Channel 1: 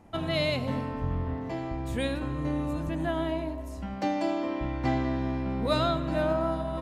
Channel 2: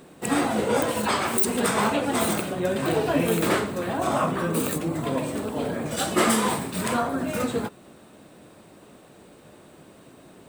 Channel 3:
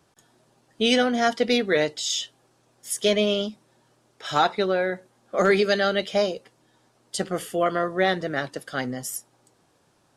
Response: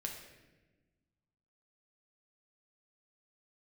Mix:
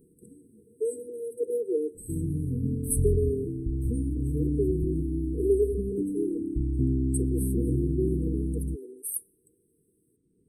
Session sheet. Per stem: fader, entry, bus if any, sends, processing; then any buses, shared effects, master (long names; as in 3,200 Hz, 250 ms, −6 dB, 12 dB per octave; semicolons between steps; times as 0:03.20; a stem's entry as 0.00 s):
−0.5 dB, 1.95 s, no send, no processing
−12.0 dB, 0.00 s, no send, Butterworth low-pass 12,000 Hz; downward compressor 12 to 1, threshold −32 dBFS, peak gain reduction 16.5 dB; automatic ducking −12 dB, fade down 0.80 s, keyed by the third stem
−3.5 dB, 0.00 s, send −20 dB, Butterworth high-pass 300 Hz 96 dB per octave; high-shelf EQ 10,000 Hz +8.5 dB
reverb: on, RT60 1.2 s, pre-delay 7 ms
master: brick-wall band-stop 490–8,000 Hz; low-shelf EQ 130 Hz +9.5 dB